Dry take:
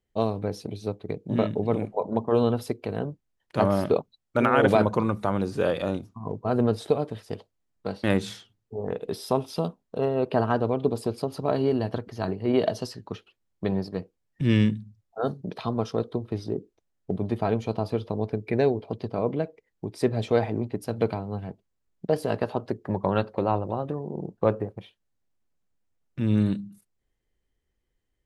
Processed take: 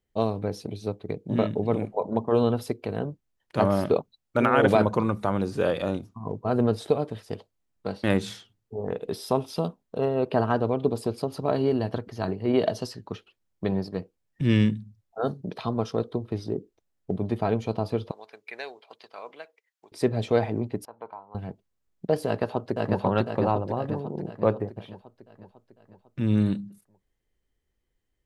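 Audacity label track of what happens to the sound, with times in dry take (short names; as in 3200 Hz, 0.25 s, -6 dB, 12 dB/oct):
18.110000	19.920000	HPF 1300 Hz
20.850000	21.350000	band-pass 960 Hz, Q 4.7
22.260000	23.010000	echo throw 0.5 s, feedback 55%, level -1 dB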